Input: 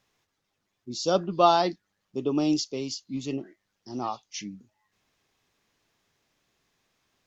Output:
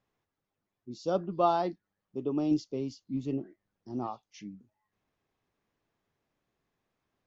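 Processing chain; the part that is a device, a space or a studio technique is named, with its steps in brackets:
0:02.51–0:04.07: low-shelf EQ 420 Hz +5.5 dB
through cloth (high-shelf EQ 2,300 Hz −15 dB)
level −4.5 dB

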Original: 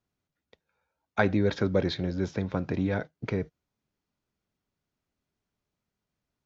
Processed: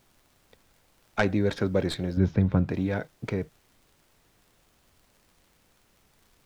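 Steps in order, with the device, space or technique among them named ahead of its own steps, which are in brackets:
record under a worn stylus (stylus tracing distortion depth 0.072 ms; surface crackle; pink noise bed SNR 32 dB)
0:02.17–0:02.69: bass and treble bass +11 dB, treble −10 dB

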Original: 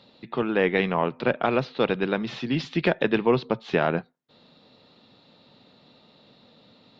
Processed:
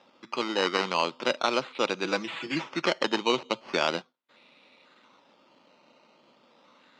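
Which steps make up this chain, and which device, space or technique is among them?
circuit-bent sampling toy (sample-and-hold swept by an LFO 10×, swing 60% 0.38 Hz; loudspeaker in its box 430–4,900 Hz, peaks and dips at 440 Hz −8 dB, 710 Hz −8 dB, 1,700 Hz −7 dB)
0:02.04–0:02.64: comb filter 6.1 ms, depth 73%
level +2.5 dB

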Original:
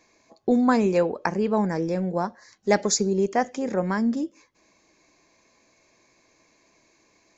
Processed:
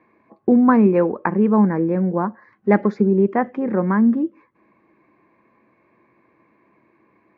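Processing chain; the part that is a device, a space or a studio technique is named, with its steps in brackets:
bass cabinet (loudspeaker in its box 77–2,100 Hz, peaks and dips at 130 Hz +5 dB, 210 Hz +7 dB, 340 Hz +5 dB, 660 Hz −4 dB, 1,100 Hz +5 dB)
level +3 dB

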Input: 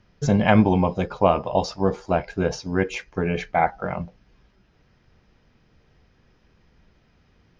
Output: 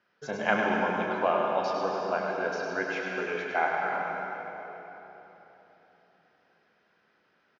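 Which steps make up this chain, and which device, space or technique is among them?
station announcement (band-pass filter 400–4,800 Hz; parametric band 1,500 Hz +8.5 dB 0.42 octaves; loudspeakers that aren't time-aligned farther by 11 metres −10 dB, 35 metres −6 dB; convolution reverb RT60 3.7 s, pre-delay 97 ms, DRR 0.5 dB)
level −8.5 dB

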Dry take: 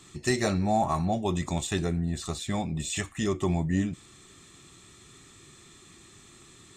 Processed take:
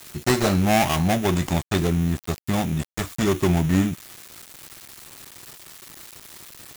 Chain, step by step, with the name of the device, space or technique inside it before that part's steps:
budget class-D amplifier (gap after every zero crossing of 0.29 ms; spike at every zero crossing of −29.5 dBFS)
level +7 dB

